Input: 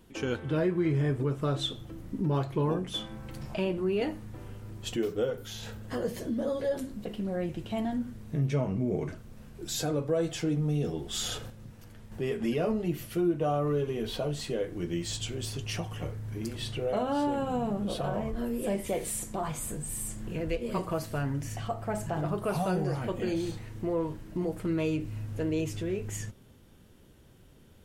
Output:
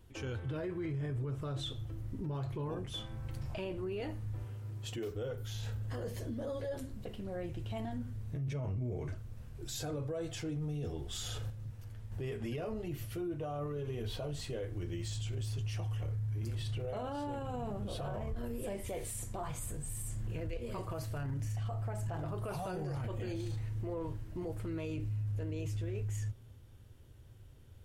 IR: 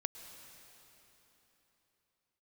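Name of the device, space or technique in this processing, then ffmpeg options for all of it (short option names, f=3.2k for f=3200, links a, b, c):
car stereo with a boomy subwoofer: -filter_complex "[0:a]asettb=1/sr,asplit=3[a][b][c];[a]atrim=end=4.444[d];[b]atrim=start=4.44:end=5.11,asetpts=PTS-STARTPTS,afade=t=in:d=0.004:c=qsin,afade=t=out:st=0.666:d=0.004:c=qsin,highpass=120[e];[c]atrim=start=5.106[f];[d][e]acrossfade=d=0.004:c1=hsin:c2=qsin[g];[g][f]acrossfade=d=0.004:c1=qsin:c2=hsin,lowshelf=f=140:t=q:w=3:g=7,alimiter=level_in=1.5dB:limit=-24dB:level=0:latency=1:release=11,volume=-1.5dB,volume=-6dB"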